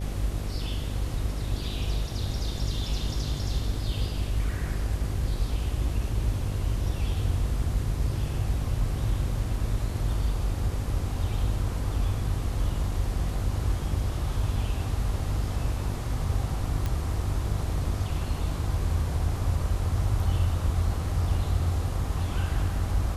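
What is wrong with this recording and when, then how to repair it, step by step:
buzz 50 Hz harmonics 14 -32 dBFS
16.86 s: pop -17 dBFS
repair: de-click; de-hum 50 Hz, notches 14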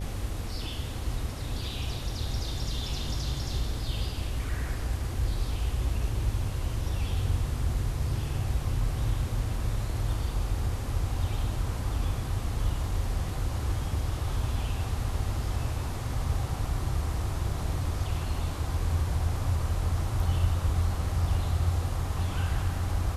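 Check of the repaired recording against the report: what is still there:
nothing left

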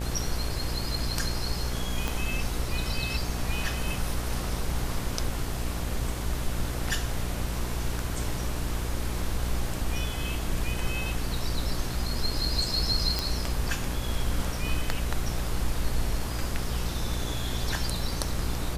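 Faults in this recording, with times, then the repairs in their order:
buzz 60 Hz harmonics 19 -33 dBFS
2.08 s: pop
13.19 s: pop -11 dBFS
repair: de-click; de-hum 60 Hz, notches 19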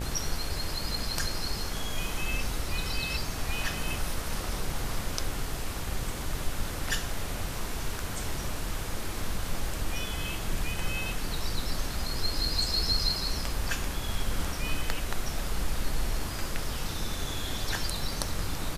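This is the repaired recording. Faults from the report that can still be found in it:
2.08 s: pop

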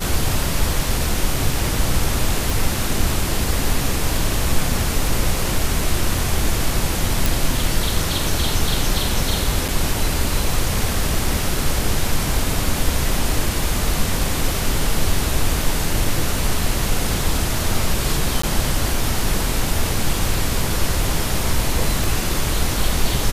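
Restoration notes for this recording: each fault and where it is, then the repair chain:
2.50 s: pop
7.26 s: pop
9.68–9.69 s: dropout 6.3 ms
18.42–18.43 s: dropout 14 ms
22.04 s: pop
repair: de-click; interpolate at 9.68 s, 6.3 ms; interpolate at 18.42 s, 14 ms

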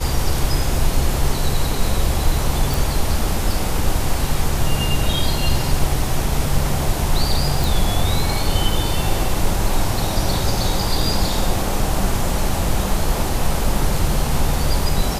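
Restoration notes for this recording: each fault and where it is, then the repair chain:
2.74 s: pop
7.64 s: pop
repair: de-click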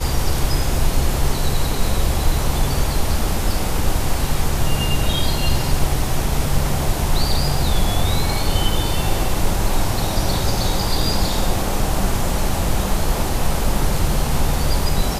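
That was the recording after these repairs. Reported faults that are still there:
nothing left

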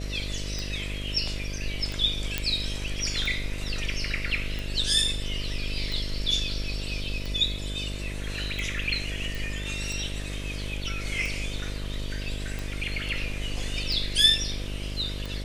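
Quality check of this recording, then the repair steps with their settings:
buzz 50 Hz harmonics 13 -34 dBFS
tick 45 rpm
2.38 s: pop -10 dBFS
9.35 s: pop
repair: de-click; de-hum 50 Hz, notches 13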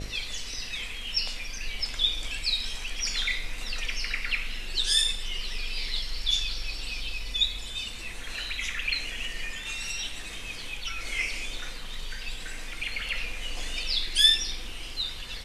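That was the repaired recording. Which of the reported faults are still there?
nothing left

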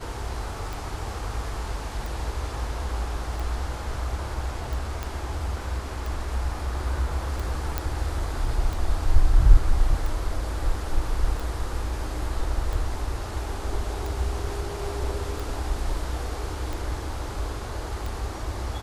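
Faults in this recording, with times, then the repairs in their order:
tick 45 rpm
5.03 s: pop -16 dBFS
7.78 s: pop -11 dBFS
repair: de-click

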